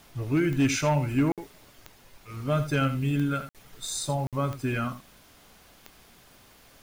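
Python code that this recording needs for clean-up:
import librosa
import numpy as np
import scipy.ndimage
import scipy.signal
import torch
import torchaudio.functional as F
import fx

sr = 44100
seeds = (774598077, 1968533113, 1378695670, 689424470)

y = fx.fix_declip(x, sr, threshold_db=-16.5)
y = fx.fix_declick_ar(y, sr, threshold=10.0)
y = fx.fix_interpolate(y, sr, at_s=(1.32, 3.49, 4.27), length_ms=57.0)
y = fx.fix_echo_inverse(y, sr, delay_ms=81, level_db=-12.0)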